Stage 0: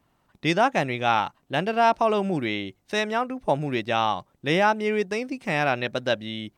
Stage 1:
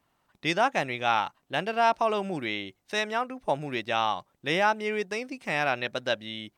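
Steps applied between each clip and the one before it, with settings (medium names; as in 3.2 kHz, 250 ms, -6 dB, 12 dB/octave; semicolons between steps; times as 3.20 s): bass shelf 450 Hz -7.5 dB; trim -1.5 dB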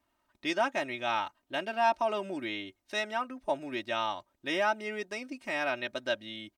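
comb 3.2 ms, depth 73%; trim -6.5 dB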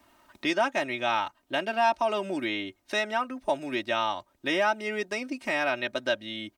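three bands compressed up and down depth 40%; trim +4 dB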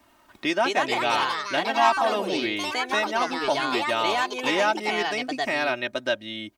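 ever faster or slower copies 282 ms, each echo +3 st, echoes 3; trim +2 dB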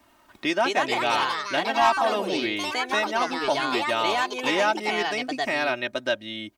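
hard clipper -11 dBFS, distortion -29 dB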